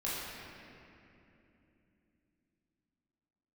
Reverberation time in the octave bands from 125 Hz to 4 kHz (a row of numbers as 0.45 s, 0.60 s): 4.3 s, 4.6 s, 3.3 s, 2.6 s, 2.7 s, 1.9 s